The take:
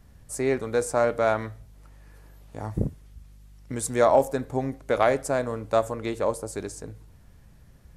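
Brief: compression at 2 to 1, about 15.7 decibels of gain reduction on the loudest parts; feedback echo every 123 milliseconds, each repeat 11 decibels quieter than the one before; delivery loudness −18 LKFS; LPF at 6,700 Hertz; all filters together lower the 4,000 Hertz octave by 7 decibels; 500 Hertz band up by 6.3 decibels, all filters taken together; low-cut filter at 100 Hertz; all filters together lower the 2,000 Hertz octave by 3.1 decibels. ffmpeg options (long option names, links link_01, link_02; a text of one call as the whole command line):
ffmpeg -i in.wav -af "highpass=100,lowpass=6700,equalizer=frequency=500:width_type=o:gain=8,equalizer=frequency=2000:width_type=o:gain=-3.5,equalizer=frequency=4000:width_type=o:gain=-7,acompressor=threshold=-39dB:ratio=2,aecho=1:1:123|246|369:0.282|0.0789|0.0221,volume=16dB" out.wav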